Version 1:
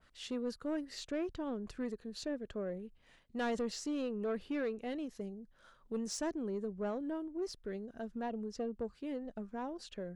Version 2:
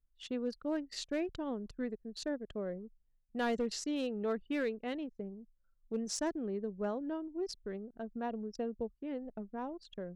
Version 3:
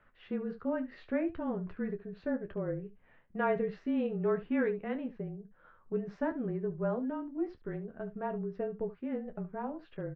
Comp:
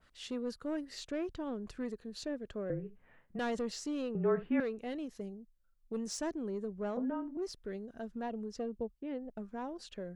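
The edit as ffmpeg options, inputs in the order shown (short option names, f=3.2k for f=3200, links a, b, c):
-filter_complex "[2:a]asplit=3[a][b][c];[1:a]asplit=2[d][e];[0:a]asplit=6[f][g][h][i][j][k];[f]atrim=end=2.702[l];[a]atrim=start=2.698:end=3.392[m];[g]atrim=start=3.388:end=4.152[n];[b]atrim=start=4.148:end=4.602[o];[h]atrim=start=4.598:end=5.372[p];[d]atrim=start=5.368:end=5.932[q];[i]atrim=start=5.928:end=6.972[r];[c]atrim=start=6.968:end=7.372[s];[j]atrim=start=7.368:end=8.782[t];[e]atrim=start=8.778:end=9.372[u];[k]atrim=start=9.368[v];[l][m]acrossfade=d=0.004:c1=hsin:c2=hsin[w];[w][n]acrossfade=d=0.004:c1=hsin:c2=hsin[x];[x][o]acrossfade=d=0.004:c1=hsin:c2=hsin[y];[y][p]acrossfade=d=0.004:c1=hsin:c2=hsin[z];[z][q]acrossfade=d=0.004:c1=hsin:c2=hsin[aa];[aa][r]acrossfade=d=0.004:c1=hsin:c2=hsin[ab];[ab][s]acrossfade=d=0.004:c1=hsin:c2=hsin[ac];[ac][t]acrossfade=d=0.004:c1=hsin:c2=hsin[ad];[ad][u]acrossfade=d=0.004:c1=hsin:c2=hsin[ae];[ae][v]acrossfade=d=0.004:c1=hsin:c2=hsin"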